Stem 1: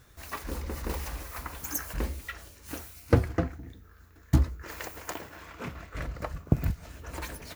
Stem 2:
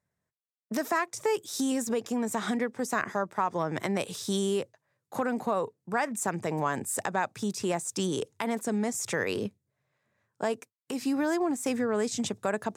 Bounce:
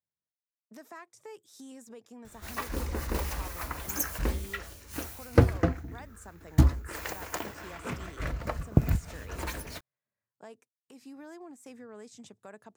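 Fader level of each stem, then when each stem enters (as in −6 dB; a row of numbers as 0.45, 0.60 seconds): +2.0, −19.0 decibels; 2.25, 0.00 seconds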